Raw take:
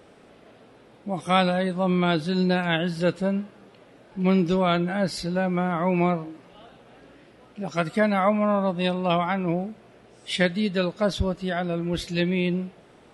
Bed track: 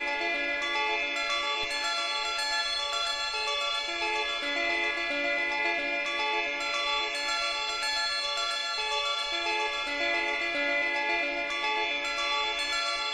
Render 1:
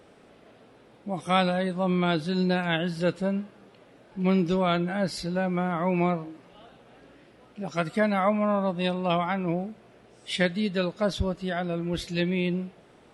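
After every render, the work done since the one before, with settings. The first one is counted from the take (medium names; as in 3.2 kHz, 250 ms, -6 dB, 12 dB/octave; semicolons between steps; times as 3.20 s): trim -2.5 dB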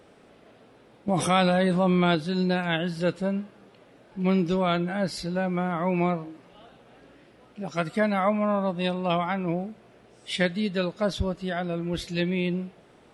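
1.08–2.15 s: level flattener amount 70%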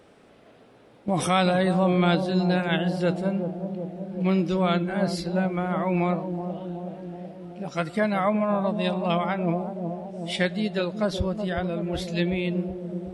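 bucket-brigade echo 373 ms, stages 2048, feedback 69%, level -7.5 dB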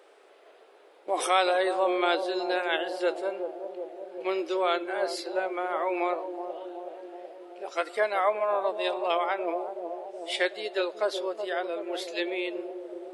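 elliptic high-pass 370 Hz, stop band 60 dB; band-stop 5.6 kHz, Q 21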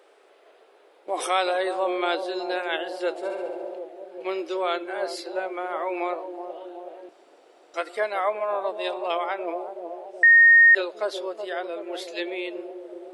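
3.16–3.79 s: flutter echo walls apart 11.8 m, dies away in 1.1 s; 7.09–7.74 s: room tone; 10.23–10.75 s: bleep 1.85 kHz -10 dBFS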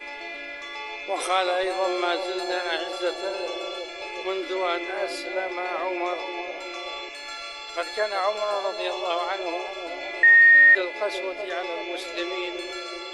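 add bed track -6.5 dB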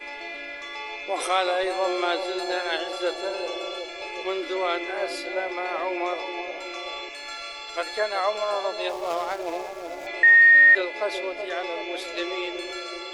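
8.89–10.07 s: median filter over 15 samples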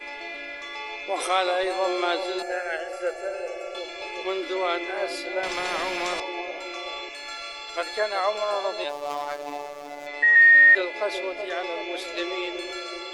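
2.42–3.75 s: static phaser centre 1 kHz, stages 6; 5.43–6.20 s: spectrum-flattening compressor 2:1; 8.84–10.36 s: robot voice 145 Hz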